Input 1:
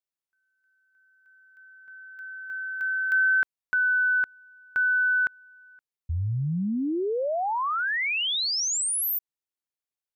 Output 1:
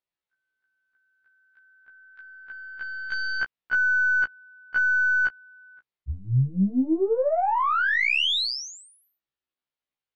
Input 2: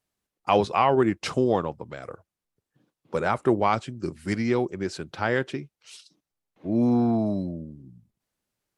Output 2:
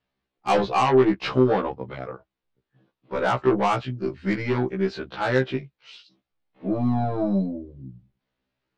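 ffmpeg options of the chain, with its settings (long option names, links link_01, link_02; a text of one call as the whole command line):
ffmpeg -i in.wav -af "lowpass=frequency=4100:width=0.5412,lowpass=frequency=4100:width=1.3066,aeval=exprs='0.422*(cos(1*acos(clip(val(0)/0.422,-1,1)))-cos(1*PI/2))+0.0944*(cos(5*acos(clip(val(0)/0.422,-1,1)))-cos(5*PI/2))+0.015*(cos(8*acos(clip(val(0)/0.422,-1,1)))-cos(8*PI/2))':channel_layout=same,afftfilt=real='re*1.73*eq(mod(b,3),0)':imag='im*1.73*eq(mod(b,3),0)':win_size=2048:overlap=0.75" out.wav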